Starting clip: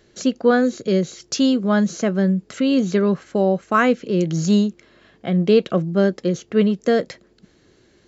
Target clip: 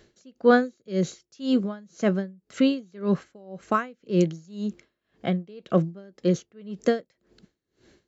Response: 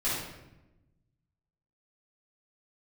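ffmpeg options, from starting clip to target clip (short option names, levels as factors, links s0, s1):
-af "aeval=exprs='val(0)*pow(10,-31*(0.5-0.5*cos(2*PI*1.9*n/s))/20)':c=same"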